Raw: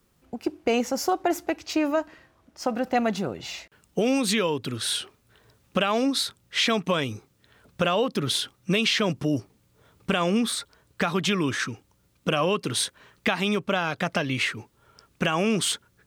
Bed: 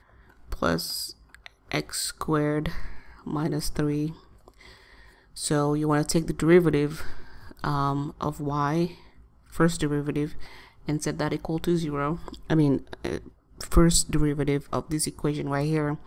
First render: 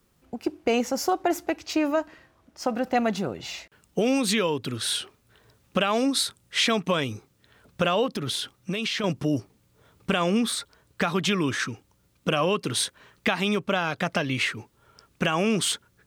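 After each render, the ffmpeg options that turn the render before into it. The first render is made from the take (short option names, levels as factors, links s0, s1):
-filter_complex "[0:a]asettb=1/sr,asplit=3[s0][s1][s2];[s0]atrim=end=5.924[s3];[s1]atrim=start=5.92:end=6.67,asetpts=PTS-STARTPTS,afade=t=in:d=0.004:c=qsin,afade=t=out:st=0.746:d=0.004:c=qsin,equalizer=f=9200:w=1.5:g=5.5[s4];[s2]atrim=start=6.666[s5];[s3][s4]acrossfade=d=0.004:c1=hsin:c2=qsin[s6];[s6][s5]acrossfade=d=0.004:c1=qsin:c2=hsin,asettb=1/sr,asplit=3[s7][s8][s9];[s7]atrim=end=8.064[s10];[s8]atrim=start=8.06:end=9.04,asetpts=PTS-STARTPTS,afade=t=in:d=0.004:c=qsin,afade=t=out:st=0.976:d=0.004:c=qsin,acompressor=threshold=0.0562:ratio=4:attack=3.2:release=140:knee=1:detection=peak[s11];[s9]atrim=start=9.036[s12];[s10][s11]acrossfade=d=0.004:c1=hsin:c2=qsin[s13];[s13][s12]acrossfade=d=0.004:c1=qsin:c2=hsin"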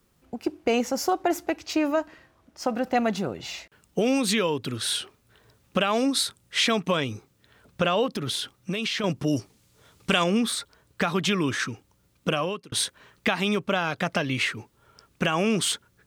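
-filter_complex "[0:a]asettb=1/sr,asplit=3[s0][s1][s2];[s0]atrim=end=6.974[s3];[s1]atrim=start=6.97:end=8,asetpts=PTS-STARTPTS,afade=t=in:d=0.004:c=qsin,afade=t=out:st=1.026:d=0.004:c=qsin,acrossover=split=7300[s4][s5];[s5]acompressor=threshold=0.00112:ratio=4:attack=1:release=60[s6];[s4][s6]amix=inputs=2:normalize=0[s7];[s2]atrim=start=7.996[s8];[s3][s7]acrossfade=d=0.004:c1=hsin:c2=qsin[s9];[s9][s8]acrossfade=d=0.004:c1=qsin:c2=hsin,asettb=1/sr,asplit=3[s10][s11][s12];[s10]atrim=end=9.274[s13];[s11]atrim=start=9.27:end=10.24,asetpts=PTS-STARTPTS,afade=t=in:d=0.004:c=qsin,afade=t=out:st=0.966:d=0.004:c=qsin,equalizer=f=6300:w=0.37:g=8.5[s14];[s12]atrim=start=10.236[s15];[s13][s14]acrossfade=d=0.004:c1=hsin:c2=qsin[s16];[s16][s15]acrossfade=d=0.004:c1=qsin:c2=hsin,asplit=2[s17][s18];[s17]atrim=end=12.72,asetpts=PTS-STARTPTS,afade=t=out:st=12.28:d=0.44[s19];[s18]atrim=start=12.72,asetpts=PTS-STARTPTS,afade=t=in:d=0.004:c=hsin[s20];[s19][s20]concat=n=2:v=0:a=1"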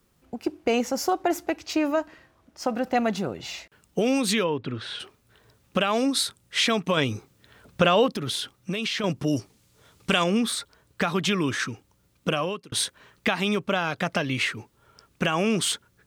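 -filter_complex "[0:a]asplit=3[s0][s1][s2];[s0]afade=t=out:st=4.43:d=0.02[s3];[s1]lowpass=2500,afade=t=in:st=4.43:d=0.02,afade=t=out:st=4.99:d=0.02[s4];[s2]afade=t=in:st=4.99:d=0.02[s5];[s3][s4][s5]amix=inputs=3:normalize=0,asplit=3[s6][s7][s8];[s6]atrim=end=6.972[s9];[s7]atrim=start=6.968:end=8.122,asetpts=PTS-STARTPTS,volume=1.58[s10];[s8]atrim=start=8.118[s11];[s9][s10]acrossfade=d=0.004:c1=hsin:c2=hsin[s12];[s12][s11]acrossfade=d=0.004:c1=hsin:c2=hsin"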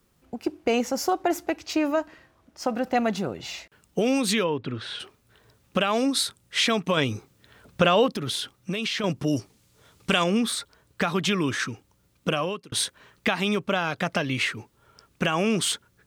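-af anull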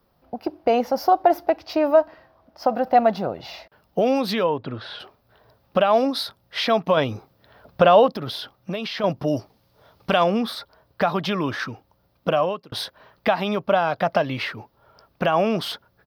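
-af "firequalizer=gain_entry='entry(400,0);entry(630,11);entry(1200,3);entry(2300,-4);entry(5000,0);entry(7200,-23);entry(13000,0)':delay=0.05:min_phase=1"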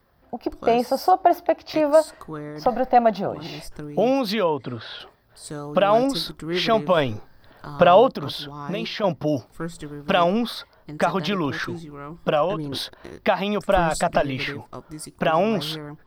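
-filter_complex "[1:a]volume=0.335[s0];[0:a][s0]amix=inputs=2:normalize=0"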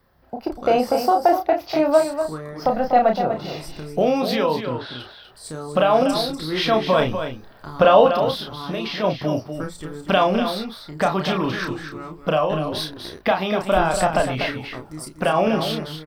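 -filter_complex "[0:a]asplit=2[s0][s1];[s1]adelay=32,volume=0.562[s2];[s0][s2]amix=inputs=2:normalize=0,asplit=2[s3][s4];[s4]aecho=0:1:244:0.376[s5];[s3][s5]amix=inputs=2:normalize=0"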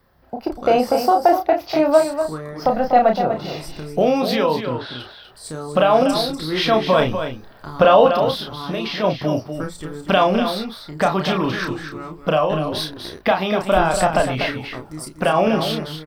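-af "volume=1.26,alimiter=limit=0.794:level=0:latency=1"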